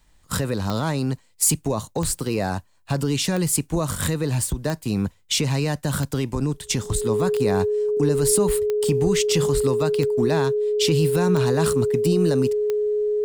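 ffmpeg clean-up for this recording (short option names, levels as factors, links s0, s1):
-af "adeclick=t=4,bandreject=f=420:w=30"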